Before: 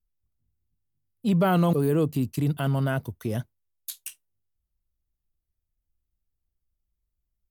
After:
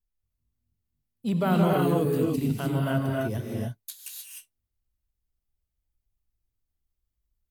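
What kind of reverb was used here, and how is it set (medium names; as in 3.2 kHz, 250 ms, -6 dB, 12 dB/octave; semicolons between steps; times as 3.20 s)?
gated-style reverb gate 330 ms rising, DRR -2 dB; trim -4 dB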